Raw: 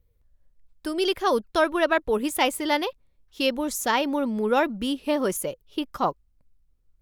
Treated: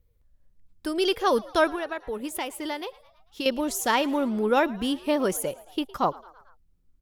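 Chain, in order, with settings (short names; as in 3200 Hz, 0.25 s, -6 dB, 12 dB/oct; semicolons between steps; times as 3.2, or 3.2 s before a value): 1.71–3.46 compressor, threshold -29 dBFS, peak gain reduction 12 dB; frequency-shifting echo 0.111 s, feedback 59%, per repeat +85 Hz, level -22 dB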